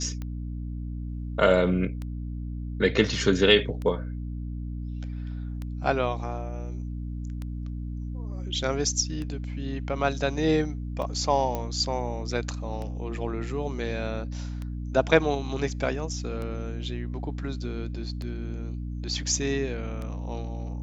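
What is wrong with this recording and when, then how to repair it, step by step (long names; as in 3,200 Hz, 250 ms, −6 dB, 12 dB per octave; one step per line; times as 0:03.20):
mains hum 60 Hz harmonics 5 −33 dBFS
scratch tick 33 1/3 rpm −23 dBFS
0:11.55: click −16 dBFS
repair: click removal
hum removal 60 Hz, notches 5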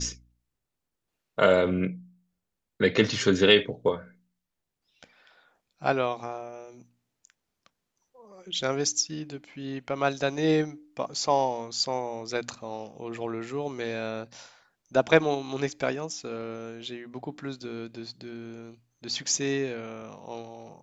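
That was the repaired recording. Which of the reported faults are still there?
none of them is left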